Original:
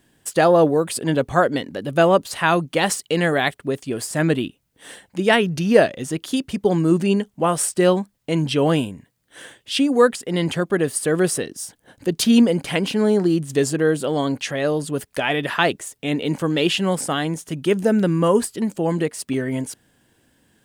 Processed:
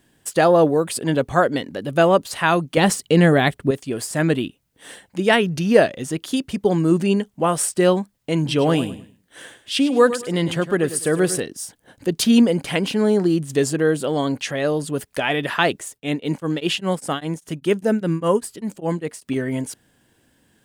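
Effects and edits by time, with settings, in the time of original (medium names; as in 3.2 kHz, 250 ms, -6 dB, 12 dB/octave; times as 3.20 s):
2.77–3.71 s: bass shelf 350 Hz +11 dB
8.38–11.40 s: feedback delay 103 ms, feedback 27%, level -12.5 dB
15.91–19.36 s: tremolo of two beating tones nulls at 5 Hz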